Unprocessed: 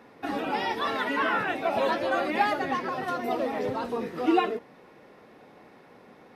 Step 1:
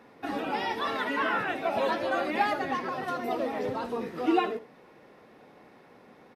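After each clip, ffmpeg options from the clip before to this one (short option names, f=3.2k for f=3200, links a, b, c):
-af "aecho=1:1:76:0.15,volume=-2dB"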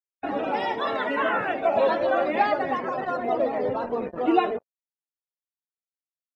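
-af "acrusher=bits=5:mix=0:aa=0.5,equalizer=f=600:w=2.1:g=7,afftdn=nr=29:nf=-40,volume=2dB"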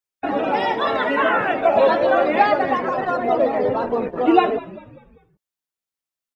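-filter_complex "[0:a]asplit=5[a][b][c][d][e];[b]adelay=196,afreqshift=-71,volume=-17.5dB[f];[c]adelay=392,afreqshift=-142,volume=-24.6dB[g];[d]adelay=588,afreqshift=-213,volume=-31.8dB[h];[e]adelay=784,afreqshift=-284,volume=-38.9dB[i];[a][f][g][h][i]amix=inputs=5:normalize=0,volume=6dB"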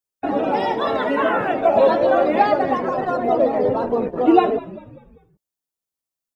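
-af "equalizer=f=2.1k:t=o:w=2.2:g=-7.5,volume=2.5dB"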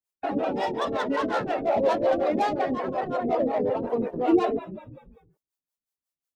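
-filter_complex "[0:a]acrossover=split=670[a][b];[b]asoftclip=type=tanh:threshold=-24.5dB[c];[a][c]amix=inputs=2:normalize=0,acrossover=split=420[d][e];[d]aeval=exprs='val(0)*(1-1/2+1/2*cos(2*PI*5.5*n/s))':c=same[f];[e]aeval=exprs='val(0)*(1-1/2-1/2*cos(2*PI*5.5*n/s))':c=same[g];[f][g]amix=inputs=2:normalize=0"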